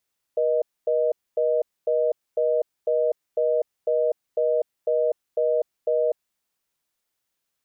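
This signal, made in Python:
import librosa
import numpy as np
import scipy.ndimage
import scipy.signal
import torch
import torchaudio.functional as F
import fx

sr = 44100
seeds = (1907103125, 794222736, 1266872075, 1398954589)

y = fx.call_progress(sr, length_s=5.94, kind='reorder tone', level_db=-21.5)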